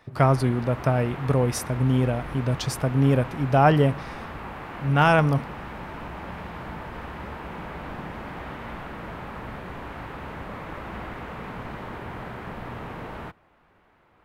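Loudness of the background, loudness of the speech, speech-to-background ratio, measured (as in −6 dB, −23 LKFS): −37.0 LKFS, −22.5 LKFS, 14.5 dB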